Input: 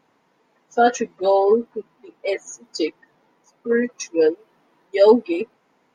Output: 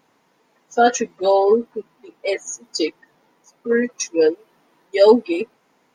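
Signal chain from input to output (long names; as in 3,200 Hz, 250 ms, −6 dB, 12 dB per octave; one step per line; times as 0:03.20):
high-shelf EQ 4,800 Hz +8.5 dB
level +1 dB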